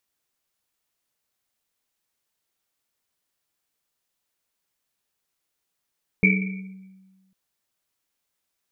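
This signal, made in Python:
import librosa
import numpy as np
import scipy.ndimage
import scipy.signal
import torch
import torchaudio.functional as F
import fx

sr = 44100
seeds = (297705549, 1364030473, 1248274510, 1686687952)

y = fx.risset_drum(sr, seeds[0], length_s=1.1, hz=190.0, decay_s=1.44, noise_hz=2300.0, noise_width_hz=170.0, noise_pct=40)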